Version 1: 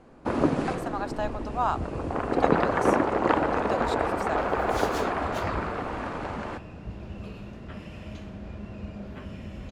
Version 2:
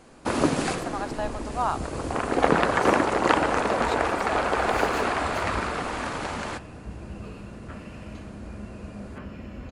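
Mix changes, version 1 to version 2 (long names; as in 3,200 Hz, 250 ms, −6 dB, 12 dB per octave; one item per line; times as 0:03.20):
first sound: remove low-pass filter 1,100 Hz 6 dB per octave
second sound: send on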